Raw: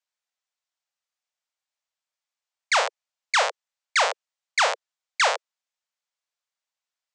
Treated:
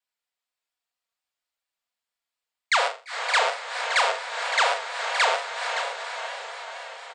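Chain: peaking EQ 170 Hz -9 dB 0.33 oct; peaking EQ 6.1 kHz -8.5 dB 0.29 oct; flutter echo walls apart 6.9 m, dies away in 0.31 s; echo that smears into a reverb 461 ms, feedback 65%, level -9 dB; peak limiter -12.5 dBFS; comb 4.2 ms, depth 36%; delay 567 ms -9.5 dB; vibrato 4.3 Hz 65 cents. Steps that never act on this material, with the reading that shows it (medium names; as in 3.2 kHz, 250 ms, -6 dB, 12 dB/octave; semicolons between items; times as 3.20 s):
peaking EQ 170 Hz: input has nothing below 380 Hz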